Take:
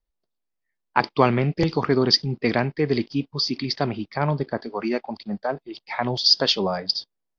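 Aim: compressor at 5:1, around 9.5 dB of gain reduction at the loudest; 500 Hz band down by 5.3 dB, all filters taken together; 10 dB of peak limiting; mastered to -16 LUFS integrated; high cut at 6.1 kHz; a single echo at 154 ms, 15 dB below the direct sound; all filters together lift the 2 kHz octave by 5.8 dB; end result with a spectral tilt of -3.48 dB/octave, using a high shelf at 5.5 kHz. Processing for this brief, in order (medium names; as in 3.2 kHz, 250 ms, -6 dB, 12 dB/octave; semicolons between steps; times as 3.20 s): low-pass 6.1 kHz; peaking EQ 500 Hz -7.5 dB; peaking EQ 2 kHz +8.5 dB; treble shelf 5.5 kHz -5.5 dB; compression 5:1, threshold -24 dBFS; peak limiter -17.5 dBFS; delay 154 ms -15 dB; trim +14.5 dB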